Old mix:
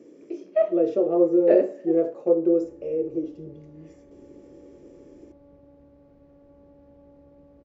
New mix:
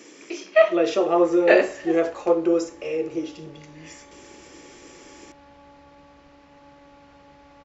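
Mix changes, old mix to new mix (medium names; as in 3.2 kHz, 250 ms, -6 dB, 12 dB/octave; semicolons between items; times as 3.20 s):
second sound: entry -1.40 s; master: remove FFT filter 560 Hz 0 dB, 830 Hz -15 dB, 2.7 kHz -23 dB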